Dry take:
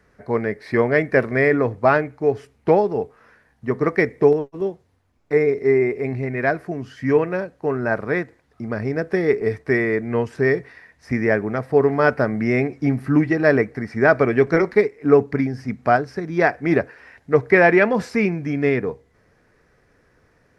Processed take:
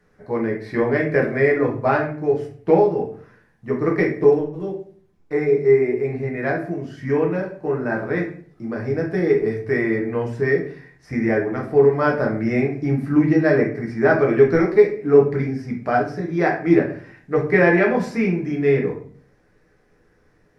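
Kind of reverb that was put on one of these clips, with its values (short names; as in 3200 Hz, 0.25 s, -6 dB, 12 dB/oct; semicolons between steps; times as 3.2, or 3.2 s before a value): shoebox room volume 44 m³, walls mixed, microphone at 0.78 m; gain -6 dB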